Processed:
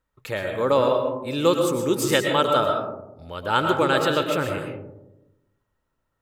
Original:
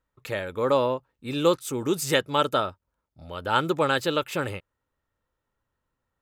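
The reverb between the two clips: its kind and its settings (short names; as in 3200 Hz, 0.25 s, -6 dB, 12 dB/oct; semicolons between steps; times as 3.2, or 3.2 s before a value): digital reverb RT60 0.96 s, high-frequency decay 0.25×, pre-delay 80 ms, DRR 3 dB; gain +1.5 dB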